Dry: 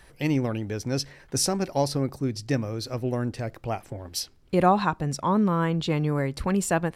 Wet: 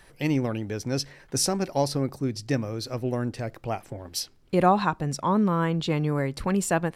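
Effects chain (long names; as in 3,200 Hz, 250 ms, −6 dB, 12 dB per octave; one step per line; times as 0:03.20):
parametric band 62 Hz −8 dB 0.78 octaves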